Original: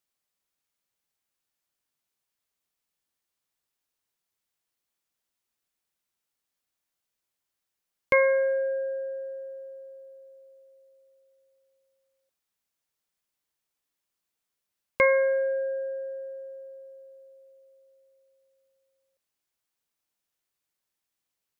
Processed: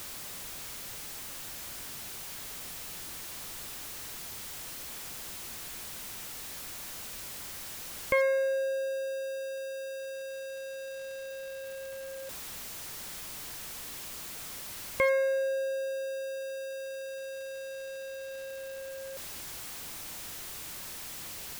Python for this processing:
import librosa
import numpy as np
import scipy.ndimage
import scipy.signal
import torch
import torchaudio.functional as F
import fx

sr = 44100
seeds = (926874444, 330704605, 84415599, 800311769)

y = x + 0.5 * 10.0 ** (-28.5 / 20.0) * np.sign(x)
y = fx.low_shelf(y, sr, hz=160.0, db=7.0)
y = F.gain(torch.from_numpy(y), -6.5).numpy()